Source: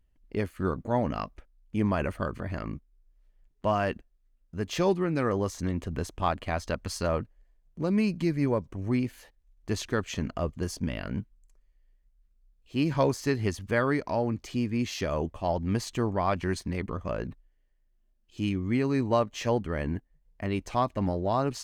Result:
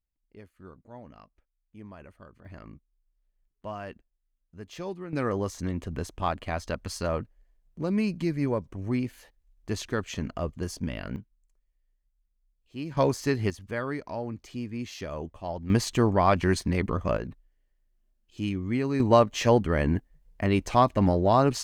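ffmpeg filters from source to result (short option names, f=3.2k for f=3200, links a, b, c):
-af "asetnsamples=n=441:p=0,asendcmd='2.45 volume volume -11dB;5.13 volume volume -1dB;11.16 volume volume -9dB;12.97 volume volume 1dB;13.5 volume volume -6dB;15.7 volume volume 5.5dB;17.17 volume volume -1dB;19 volume volume 6dB',volume=-19dB"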